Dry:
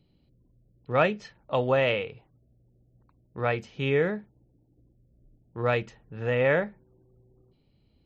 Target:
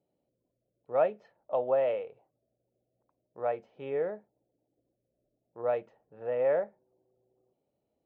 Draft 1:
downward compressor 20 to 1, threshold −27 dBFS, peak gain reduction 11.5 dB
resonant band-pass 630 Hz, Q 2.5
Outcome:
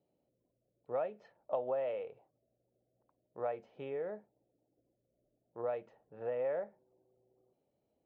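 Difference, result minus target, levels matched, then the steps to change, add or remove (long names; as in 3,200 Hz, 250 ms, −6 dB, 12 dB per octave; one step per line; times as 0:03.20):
downward compressor: peak gain reduction +11.5 dB
remove: downward compressor 20 to 1, threshold −27 dBFS, peak gain reduction 11.5 dB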